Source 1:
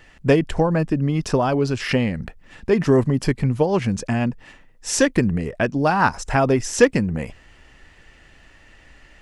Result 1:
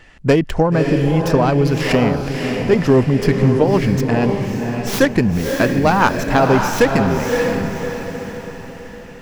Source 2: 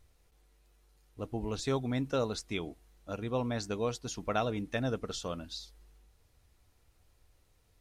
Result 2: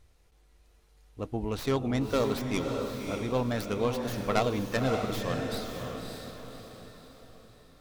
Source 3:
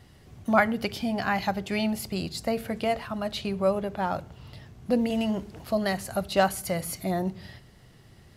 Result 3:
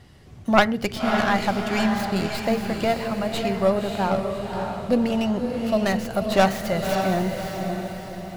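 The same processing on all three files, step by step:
tracing distortion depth 0.2 ms; treble shelf 11 kHz -7.5 dB; on a send: echo that smears into a reverb 579 ms, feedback 45%, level -4.5 dB; on the sum: dynamic bell 8.6 kHz, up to -4 dB, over -58 dBFS, Q 5.7; loudness maximiser +4.5 dB; trim -1 dB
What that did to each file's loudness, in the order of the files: +4.0 LU, +4.5 LU, +4.5 LU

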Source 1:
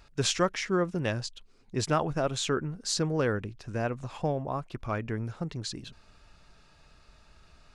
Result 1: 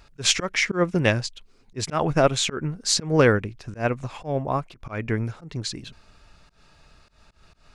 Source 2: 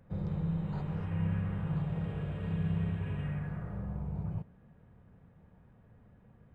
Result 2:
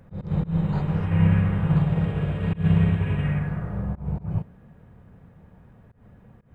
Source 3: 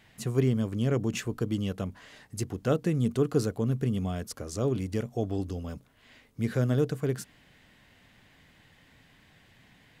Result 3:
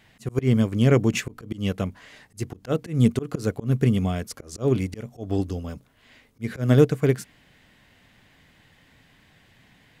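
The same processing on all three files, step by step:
slow attack 136 ms; dynamic bell 2.2 kHz, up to +6 dB, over -59 dBFS, Q 3.5; upward expansion 1.5:1, over -39 dBFS; normalise loudness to -24 LUFS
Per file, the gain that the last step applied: +11.0 dB, +14.0 dB, +10.5 dB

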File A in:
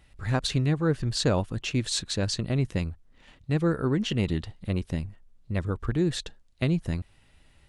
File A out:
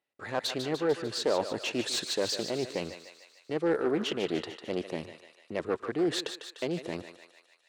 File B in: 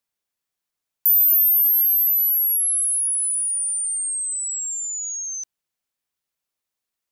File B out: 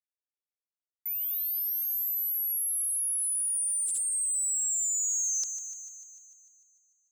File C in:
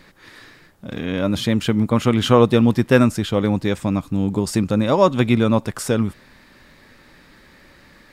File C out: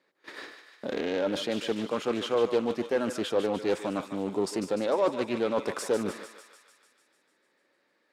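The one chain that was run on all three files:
reverse; compression 10:1, threshold -27 dBFS; reverse; gate -43 dBFS, range -27 dB; frequency weighting A; saturation -27 dBFS; high-pass 55 Hz 12 dB/octave; peaking EQ 420 Hz +12 dB 1.7 oct; on a send: thinning echo 149 ms, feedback 66%, high-pass 690 Hz, level -8 dB; on the sum: loudspeaker Doppler distortion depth 0.18 ms; trim +2 dB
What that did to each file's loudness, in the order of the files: -3.5 LU, -9.5 LU, -11.0 LU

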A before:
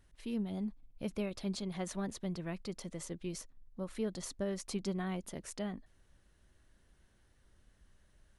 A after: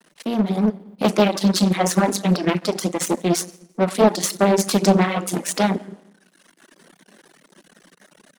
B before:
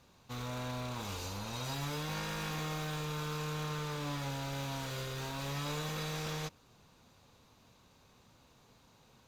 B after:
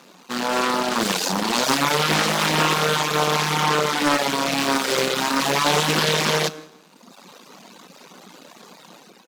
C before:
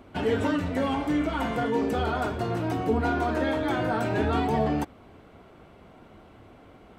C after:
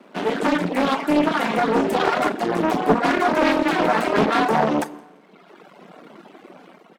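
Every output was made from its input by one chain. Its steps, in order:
level rider gain up to 6 dB; plate-style reverb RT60 0.91 s, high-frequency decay 0.75×, DRR 5 dB; half-wave rectifier; elliptic high-pass 170 Hz, stop band 40 dB; feedback delay 171 ms, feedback 23%, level -18.5 dB; reverb removal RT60 1.3 s; loudspeaker Doppler distortion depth 0.46 ms; normalise loudness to -20 LUFS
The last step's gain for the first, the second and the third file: +21.0 dB, +21.0 dB, +8.0 dB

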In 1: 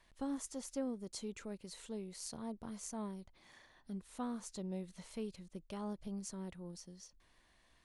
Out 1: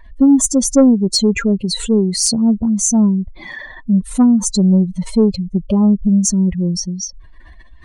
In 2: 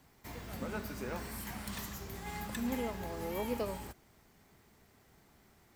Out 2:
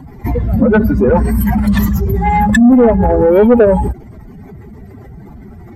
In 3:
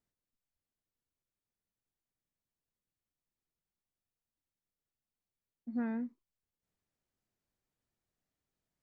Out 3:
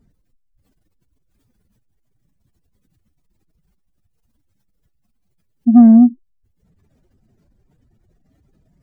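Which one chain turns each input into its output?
spectral contrast enhancement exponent 2.4; saturation -33 dBFS; peak normalisation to -2 dBFS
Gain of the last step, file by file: +31.5 dB, +31.0 dB, +31.5 dB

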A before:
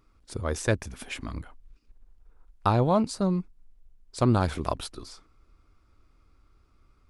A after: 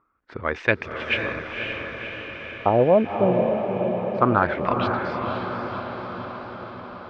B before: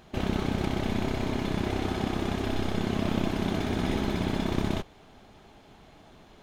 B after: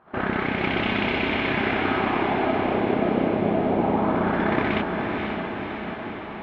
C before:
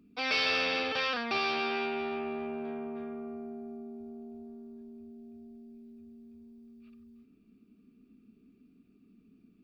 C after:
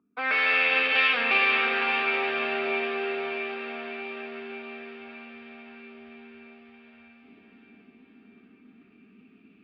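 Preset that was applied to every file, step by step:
high-pass 270 Hz 6 dB/octave; gate -56 dBFS, range -10 dB; treble shelf 2 kHz +8 dB; reverse; upward compressor, threshold -44 dBFS; reverse; LFO low-pass sine 0.24 Hz 530–2700 Hz; distance through air 180 m; echo that smears into a reverb 532 ms, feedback 66%, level -4.5 dB; normalise loudness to -24 LUFS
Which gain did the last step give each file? +4.0 dB, +5.5 dB, +1.5 dB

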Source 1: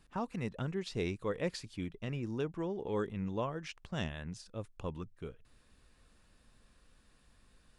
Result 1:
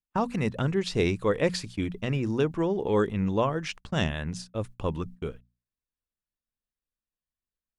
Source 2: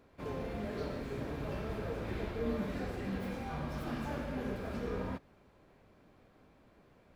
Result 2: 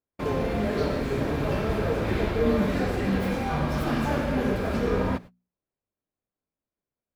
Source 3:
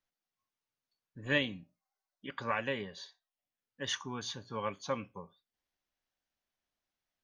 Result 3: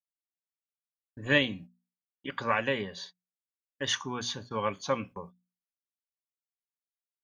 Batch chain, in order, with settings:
gate -51 dBFS, range -43 dB; hum notches 60/120/180/240 Hz; peak normalisation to -12 dBFS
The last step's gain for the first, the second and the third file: +10.5 dB, +13.0 dB, +6.0 dB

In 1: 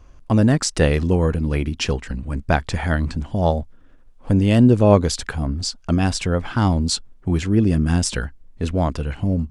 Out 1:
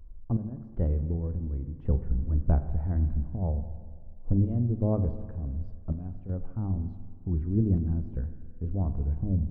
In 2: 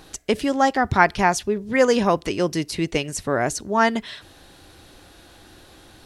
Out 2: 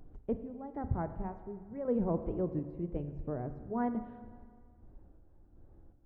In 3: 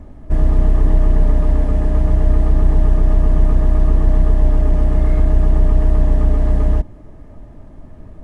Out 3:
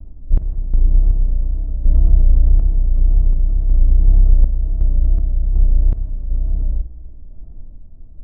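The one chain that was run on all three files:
low-pass 1 kHz 12 dB/octave; tilt EQ -4.5 dB/octave; hum notches 50/100/150/200/250 Hz; gain riding within 4 dB 2 s; random-step tremolo 2.7 Hz, depth 80%; wow and flutter 120 cents; spring tank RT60 1.8 s, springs 41/51 ms, chirp 50 ms, DRR 10 dB; trim -17.5 dB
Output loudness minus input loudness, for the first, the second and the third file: -10.5 LU, -16.0 LU, -2.0 LU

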